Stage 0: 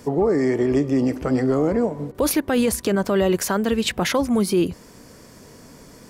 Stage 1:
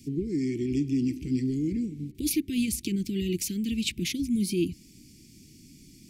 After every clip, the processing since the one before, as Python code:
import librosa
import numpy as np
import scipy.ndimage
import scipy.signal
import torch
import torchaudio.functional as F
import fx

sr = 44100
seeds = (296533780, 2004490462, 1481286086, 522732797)

y = scipy.signal.sosfilt(scipy.signal.cheby1(4, 1.0, [340.0, 2300.0], 'bandstop', fs=sr, output='sos'), x)
y = F.gain(torch.from_numpy(y), -5.0).numpy()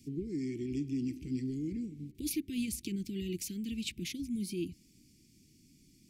y = fx.rider(x, sr, range_db=10, speed_s=2.0)
y = F.gain(torch.from_numpy(y), -8.5).numpy()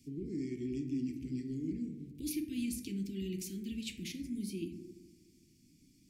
y = fx.rev_plate(x, sr, seeds[0], rt60_s=1.5, hf_ratio=0.25, predelay_ms=0, drr_db=3.5)
y = F.gain(torch.from_numpy(y), -4.5).numpy()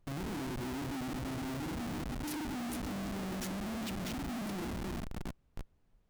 y = fx.echo_filtered(x, sr, ms=317, feedback_pct=69, hz=3200.0, wet_db=-9.0)
y = fx.schmitt(y, sr, flips_db=-43.5)
y = fx.dmg_noise_colour(y, sr, seeds[1], colour='brown', level_db=-69.0)
y = F.gain(torch.from_numpy(y), 1.0).numpy()